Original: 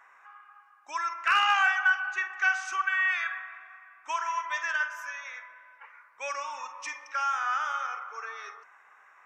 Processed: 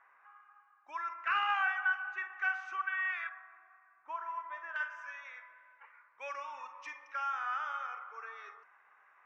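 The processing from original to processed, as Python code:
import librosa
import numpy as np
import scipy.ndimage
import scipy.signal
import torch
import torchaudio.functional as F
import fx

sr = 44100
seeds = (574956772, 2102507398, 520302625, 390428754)

y = fx.lowpass(x, sr, hz=fx.steps((0.0, 2400.0), (3.29, 1200.0), (4.76, 3200.0)), slope=12)
y = y * librosa.db_to_amplitude(-7.0)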